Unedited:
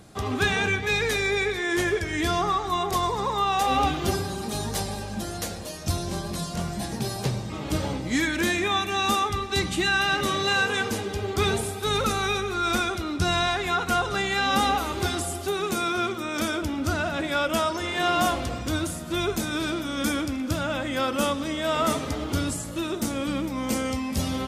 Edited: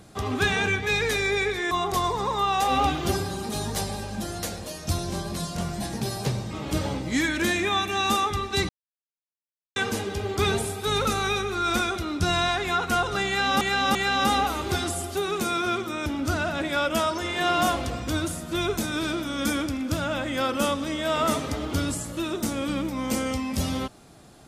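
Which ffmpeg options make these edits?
-filter_complex "[0:a]asplit=7[a][b][c][d][e][f][g];[a]atrim=end=1.712[h];[b]atrim=start=2.698:end=9.68,asetpts=PTS-STARTPTS,afade=t=out:st=6.978:d=0.004:c=hsin[i];[c]atrim=start=9.68:end=10.75,asetpts=PTS-STARTPTS,volume=0[j];[d]atrim=start=10.75:end=14.602,asetpts=PTS-STARTPTS,afade=t=in:d=0.004:c=hsin[k];[e]atrim=start=14.258:end=14.602[l];[f]atrim=start=14.258:end=16.372[m];[g]atrim=start=16.648[n];[i][j][k]concat=n=3:v=0:a=1[o];[h][o]acrossfade=d=0.004:c1=hsin:c2=hsin[p];[p][l]acrossfade=d=0.004:c1=hsin:c2=hsin[q];[q][m]acrossfade=d=0.004:c1=hsin:c2=hsin[r];[r][n]acrossfade=d=0.004:c1=hsin:c2=hsin"

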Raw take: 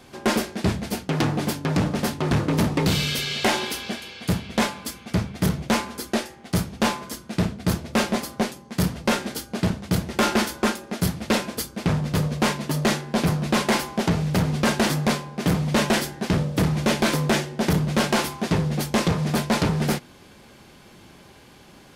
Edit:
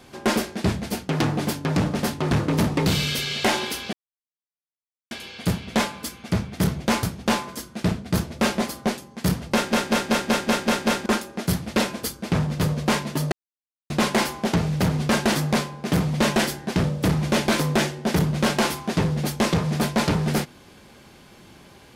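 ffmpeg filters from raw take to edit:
-filter_complex "[0:a]asplit=13[a][b][c][d][e][f][g][h][i][j][k][l][m];[a]atrim=end=3.93,asetpts=PTS-STARTPTS,afade=t=out:st=3.926:d=0.004:c=hsin,apad=pad_dur=1.18[n];[b]atrim=start=3.93:end=5.852,asetpts=PTS-STARTPTS,afade=t=in:d=0.004:c=hsin[o];[c]atrim=start=6.568:end=9.272[p];[d]atrim=start=9.078:end=9.272[q];[e]atrim=start=9.078:end=9.272[r];[f]atrim=start=9.078:end=9.272[s];[g]atrim=start=9.078:end=9.272[t];[h]atrim=start=9.078:end=9.272[u];[i]atrim=start=9.078:end=9.272[v];[j]atrim=start=9.078:end=9.272[w];[k]atrim=start=10.598:end=12.86,asetpts=PTS-STARTPTS,afade=t=out:st=2.258:d=0.004:c=hsin[x];[l]atrim=start=12.86:end=13.44,asetpts=PTS-STARTPTS,volume=0[y];[m]atrim=start=13.44,asetpts=PTS-STARTPTS,afade=t=in:d=0.004:c=hsin[z];[n][o]concat=n=2:v=0:a=1[aa];[aa][p]acrossfade=d=0.004:c1=hsin:c2=hsin[ab];[ab][q]acrossfade=d=0.004:c1=hsin:c2=hsin[ac];[ac][r]acrossfade=d=0.004:c1=hsin:c2=hsin[ad];[ad][s]acrossfade=d=0.004:c1=hsin:c2=hsin[ae];[ae][t]acrossfade=d=0.004:c1=hsin:c2=hsin[af];[af][u]acrossfade=d=0.004:c1=hsin:c2=hsin[ag];[ag][v]acrossfade=d=0.004:c1=hsin:c2=hsin[ah];[ah][w]acrossfade=d=0.004:c1=hsin:c2=hsin[ai];[x][y][z]concat=n=3:v=0:a=1[aj];[ai][aj]acrossfade=d=0.004:c1=hsin:c2=hsin"

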